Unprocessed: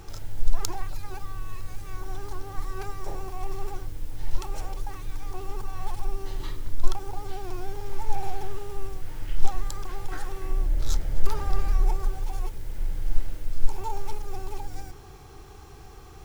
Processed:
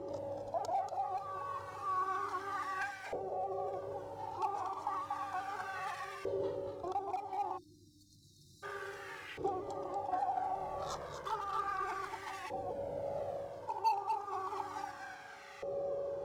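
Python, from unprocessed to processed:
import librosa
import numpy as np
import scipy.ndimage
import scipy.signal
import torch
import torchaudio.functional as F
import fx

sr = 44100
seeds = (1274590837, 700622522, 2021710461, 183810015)

p1 = scipy.signal.sosfilt(scipy.signal.butter(2, 110.0, 'highpass', fs=sr, output='sos'), x)
p2 = p1 + fx.echo_single(p1, sr, ms=237, db=-6.0, dry=0)
p3 = p2 + 10.0 ** (-54.0 / 20.0) * np.sin(2.0 * np.pi * 560.0 * np.arange(len(p2)) / sr)
p4 = fx.filter_lfo_bandpass(p3, sr, shape='saw_up', hz=0.32, low_hz=480.0, high_hz=2000.0, q=3.8)
p5 = 10.0 ** (-39.0 / 20.0) * (np.abs((p4 / 10.0 ** (-39.0 / 20.0) + 3.0) % 4.0 - 2.0) - 1.0)
p6 = p4 + (p5 * 10.0 ** (-5.5 / 20.0))
p7 = fx.peak_eq(p6, sr, hz=1800.0, db=-8.5, octaves=1.8)
p8 = fx.rider(p7, sr, range_db=4, speed_s=0.5)
p9 = fx.spec_erase(p8, sr, start_s=7.57, length_s=1.06, low_hz=350.0, high_hz=3600.0)
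p10 = fx.comb_cascade(p9, sr, direction='falling', hz=0.41)
y = p10 * 10.0 ** (14.5 / 20.0)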